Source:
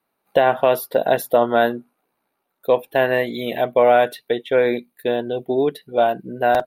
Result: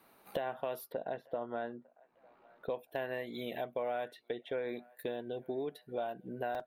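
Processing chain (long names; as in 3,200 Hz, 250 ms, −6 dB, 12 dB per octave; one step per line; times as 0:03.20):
0:04.08–0:04.69: high-shelf EQ 7,500 Hz −11.5 dB
downward compressor 3 to 1, threshold −58 dBFS, peak gain reduction 33.5 dB
0:00.92–0:02.70: high-frequency loss of the air 320 metres
delay with a band-pass on its return 901 ms, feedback 40%, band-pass 1,100 Hz, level −24 dB
slew-rate limiting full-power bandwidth 24 Hz
level +10.5 dB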